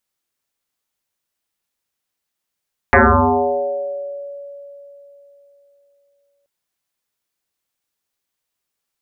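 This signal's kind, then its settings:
two-operator FM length 3.53 s, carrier 566 Hz, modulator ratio 0.28, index 9.7, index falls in 1.86 s exponential, decay 3.64 s, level −6 dB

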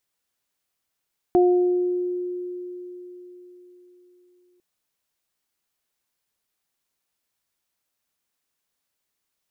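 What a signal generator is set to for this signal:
harmonic partials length 3.25 s, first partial 358 Hz, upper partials −7 dB, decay 4.17 s, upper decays 0.99 s, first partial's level −13 dB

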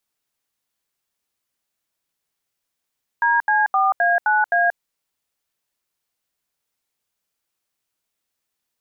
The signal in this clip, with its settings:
touch tones "DC4A9A", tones 182 ms, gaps 78 ms, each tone −17 dBFS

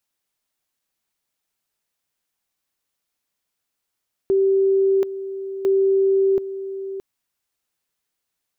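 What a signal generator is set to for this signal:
tone at two levels in turn 388 Hz −14 dBFS, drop 12.5 dB, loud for 0.73 s, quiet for 0.62 s, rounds 2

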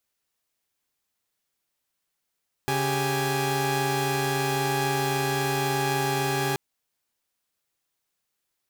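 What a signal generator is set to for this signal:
held notes C#3/G4/G#5 saw, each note −25.5 dBFS 3.88 s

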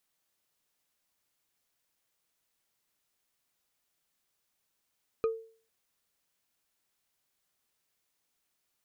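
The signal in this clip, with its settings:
struck wood bar, lowest mode 450 Hz, decay 0.44 s, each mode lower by 9.5 dB, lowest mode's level −22.5 dB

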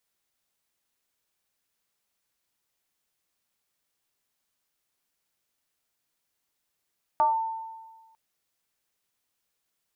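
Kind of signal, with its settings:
two-operator FM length 0.95 s, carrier 896 Hz, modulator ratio 0.31, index 0.6, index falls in 0.14 s linear, decay 1.40 s, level −17 dB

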